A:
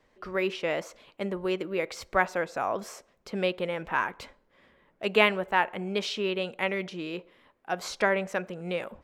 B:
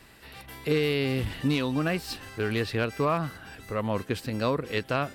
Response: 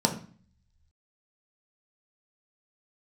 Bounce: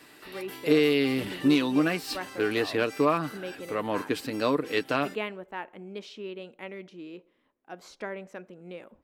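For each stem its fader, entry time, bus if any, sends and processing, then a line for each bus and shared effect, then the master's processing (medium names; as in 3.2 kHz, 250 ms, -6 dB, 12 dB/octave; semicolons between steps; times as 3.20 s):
-13.5 dB, 0.00 s, no send, none
+1.0 dB, 0.00 s, no send, high-pass 510 Hz 6 dB/octave; comb 6.7 ms, depth 35%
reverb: none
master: peaking EQ 290 Hz +9 dB 1 oct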